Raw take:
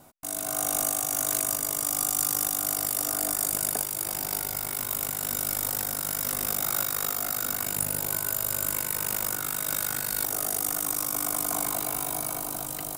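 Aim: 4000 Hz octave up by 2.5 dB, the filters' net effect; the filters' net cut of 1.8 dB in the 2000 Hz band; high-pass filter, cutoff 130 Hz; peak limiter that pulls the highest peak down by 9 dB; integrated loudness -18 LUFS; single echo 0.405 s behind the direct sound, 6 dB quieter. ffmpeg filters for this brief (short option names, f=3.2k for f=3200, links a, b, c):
-af "highpass=130,equalizer=f=2k:t=o:g=-3.5,equalizer=f=4k:t=o:g=4,alimiter=limit=-17.5dB:level=0:latency=1,aecho=1:1:405:0.501,volume=10dB"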